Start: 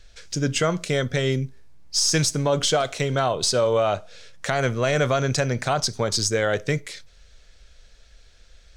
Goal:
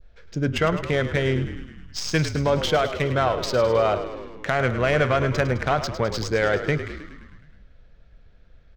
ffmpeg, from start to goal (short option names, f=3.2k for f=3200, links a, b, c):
-filter_complex "[0:a]adynamicsmooth=sensitivity=1:basefreq=1.7k,adynamicequalizer=threshold=0.0141:dfrequency=2000:dqfactor=0.83:tfrequency=2000:tqfactor=0.83:attack=5:release=100:ratio=0.375:range=2:mode=boostabove:tftype=bell,asplit=9[a][b][c][d][e][f][g][h][i];[b]adelay=105,afreqshift=-43,volume=-11dB[j];[c]adelay=210,afreqshift=-86,volume=-14.9dB[k];[d]adelay=315,afreqshift=-129,volume=-18.8dB[l];[e]adelay=420,afreqshift=-172,volume=-22.6dB[m];[f]adelay=525,afreqshift=-215,volume=-26.5dB[n];[g]adelay=630,afreqshift=-258,volume=-30.4dB[o];[h]adelay=735,afreqshift=-301,volume=-34.3dB[p];[i]adelay=840,afreqshift=-344,volume=-38.1dB[q];[a][j][k][l][m][n][o][p][q]amix=inputs=9:normalize=0"